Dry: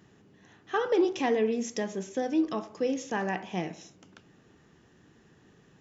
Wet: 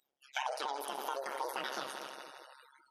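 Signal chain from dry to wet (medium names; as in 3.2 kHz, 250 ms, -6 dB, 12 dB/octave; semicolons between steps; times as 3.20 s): sawtooth pitch modulation -4 st, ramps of 655 ms; treble shelf 2.9 kHz +11 dB; multi-head delay 156 ms, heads all three, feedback 67%, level -17 dB; AM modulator 68 Hz, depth 95%; compression 20:1, threshold -36 dBFS, peak gain reduction 14 dB; spectral noise reduction 30 dB; tone controls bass -10 dB, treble -13 dB; band-stop 2.1 kHz, Q 16; speed mistake 7.5 ips tape played at 15 ips; decay stretcher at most 73 dB/s; trim +5 dB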